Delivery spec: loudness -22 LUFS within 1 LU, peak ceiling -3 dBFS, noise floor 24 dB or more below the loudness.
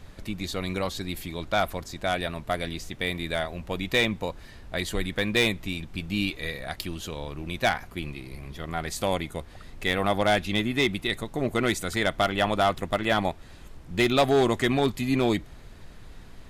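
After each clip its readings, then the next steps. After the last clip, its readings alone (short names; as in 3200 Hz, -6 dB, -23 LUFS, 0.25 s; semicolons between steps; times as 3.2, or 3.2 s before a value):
clipped 0.5%; flat tops at -15.0 dBFS; noise floor -46 dBFS; noise floor target -51 dBFS; loudness -27.0 LUFS; peak -15.0 dBFS; loudness target -22.0 LUFS
-> clip repair -15 dBFS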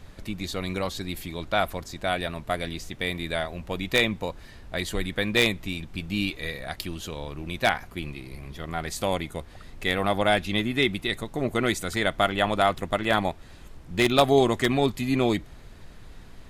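clipped 0.0%; noise floor -46 dBFS; noise floor target -51 dBFS
-> noise print and reduce 6 dB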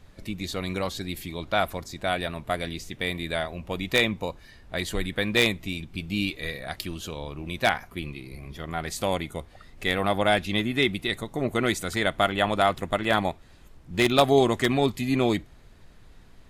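noise floor -51 dBFS; loudness -26.5 LUFS; peak -6.0 dBFS; loudness target -22.0 LUFS
-> gain +4.5 dB; limiter -3 dBFS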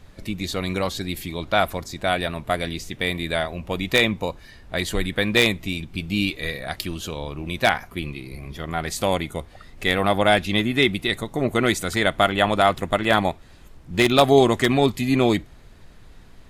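loudness -22.0 LUFS; peak -3.0 dBFS; noise floor -47 dBFS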